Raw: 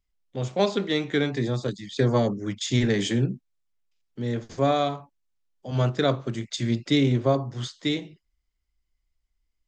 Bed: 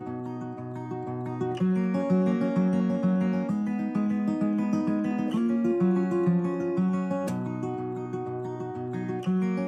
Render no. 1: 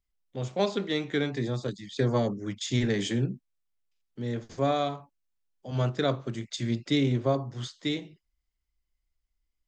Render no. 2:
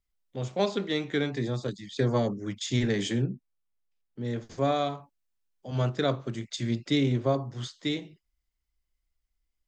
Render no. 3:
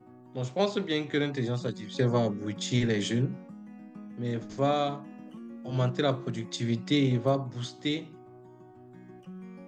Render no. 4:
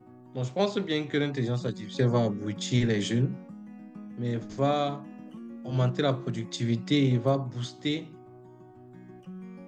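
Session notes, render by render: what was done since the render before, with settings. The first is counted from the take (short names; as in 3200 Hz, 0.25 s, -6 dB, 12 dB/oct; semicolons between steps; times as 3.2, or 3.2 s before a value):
gain -4 dB
3.22–4.25 high shelf 2400 Hz -9.5 dB
add bed -18 dB
low shelf 180 Hz +3.5 dB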